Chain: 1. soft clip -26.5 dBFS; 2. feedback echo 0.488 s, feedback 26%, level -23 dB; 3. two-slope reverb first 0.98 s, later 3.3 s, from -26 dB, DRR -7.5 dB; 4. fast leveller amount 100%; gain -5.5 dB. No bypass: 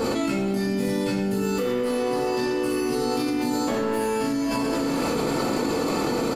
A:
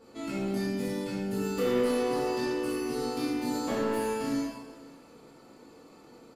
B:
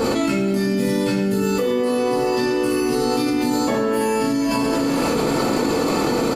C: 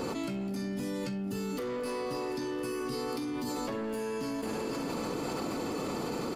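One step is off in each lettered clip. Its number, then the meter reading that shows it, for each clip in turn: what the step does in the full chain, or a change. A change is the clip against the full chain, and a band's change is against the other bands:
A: 4, crest factor change +3.5 dB; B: 1, distortion -13 dB; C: 3, loudness change -10.0 LU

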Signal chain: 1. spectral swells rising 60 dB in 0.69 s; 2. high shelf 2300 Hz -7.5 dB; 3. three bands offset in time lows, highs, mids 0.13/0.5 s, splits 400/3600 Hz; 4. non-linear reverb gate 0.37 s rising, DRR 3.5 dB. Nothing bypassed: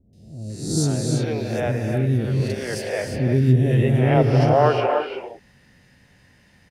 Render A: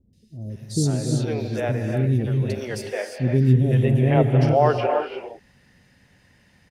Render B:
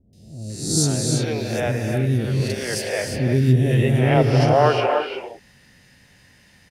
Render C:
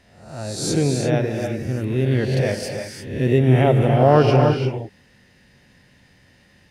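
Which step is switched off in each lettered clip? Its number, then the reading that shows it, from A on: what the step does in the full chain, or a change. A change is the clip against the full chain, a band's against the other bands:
1, 4 kHz band -2.0 dB; 2, 8 kHz band +6.5 dB; 3, echo-to-direct 18.5 dB to -3.5 dB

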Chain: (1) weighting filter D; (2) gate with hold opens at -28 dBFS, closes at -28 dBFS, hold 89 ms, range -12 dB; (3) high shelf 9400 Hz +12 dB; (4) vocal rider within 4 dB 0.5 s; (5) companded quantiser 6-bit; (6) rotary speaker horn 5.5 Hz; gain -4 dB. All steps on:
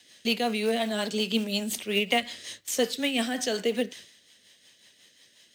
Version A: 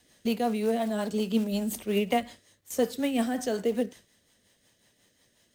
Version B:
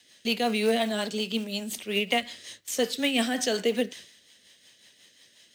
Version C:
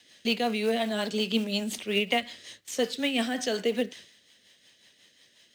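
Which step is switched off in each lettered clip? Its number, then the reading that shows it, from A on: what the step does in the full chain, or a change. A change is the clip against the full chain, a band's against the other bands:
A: 1, 4 kHz band -11.0 dB; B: 4, momentary loudness spread change +2 LU; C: 3, 8 kHz band -4.0 dB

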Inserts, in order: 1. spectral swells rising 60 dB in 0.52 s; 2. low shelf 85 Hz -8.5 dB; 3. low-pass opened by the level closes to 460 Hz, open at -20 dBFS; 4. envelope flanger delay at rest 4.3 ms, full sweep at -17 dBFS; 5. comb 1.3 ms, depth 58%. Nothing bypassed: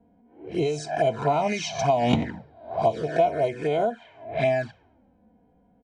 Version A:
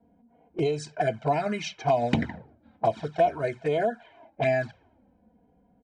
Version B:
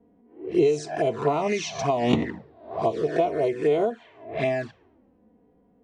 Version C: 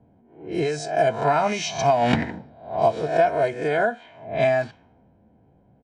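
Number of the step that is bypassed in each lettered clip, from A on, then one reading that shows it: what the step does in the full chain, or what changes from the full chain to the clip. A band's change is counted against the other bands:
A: 1, 4 kHz band -2.0 dB; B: 5, 250 Hz band +3.5 dB; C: 4, crest factor change -1.5 dB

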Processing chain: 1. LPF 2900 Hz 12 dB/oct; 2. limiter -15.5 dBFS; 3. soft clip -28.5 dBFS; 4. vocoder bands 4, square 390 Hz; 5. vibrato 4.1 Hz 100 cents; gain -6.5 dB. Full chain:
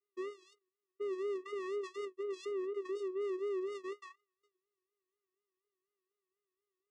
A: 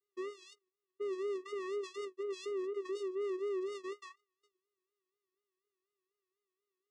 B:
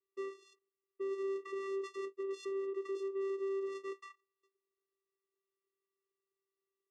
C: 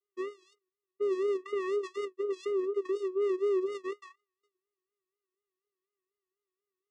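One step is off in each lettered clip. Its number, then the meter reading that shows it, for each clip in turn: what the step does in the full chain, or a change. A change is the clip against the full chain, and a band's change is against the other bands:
1, 4 kHz band +3.0 dB; 5, 4 kHz band -2.5 dB; 3, distortion -8 dB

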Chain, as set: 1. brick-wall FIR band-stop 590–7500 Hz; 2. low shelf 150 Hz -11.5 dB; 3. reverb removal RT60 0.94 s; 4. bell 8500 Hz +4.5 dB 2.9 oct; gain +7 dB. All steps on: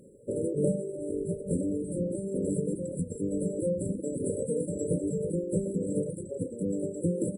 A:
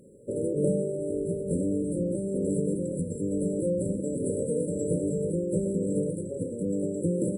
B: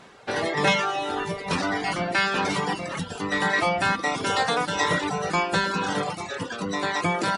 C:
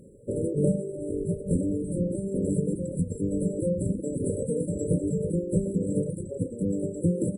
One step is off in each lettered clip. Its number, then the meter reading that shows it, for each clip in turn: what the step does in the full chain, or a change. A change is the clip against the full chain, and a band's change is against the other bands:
3, loudness change +2.5 LU; 1, 8 kHz band +5.5 dB; 2, 125 Hz band +4.5 dB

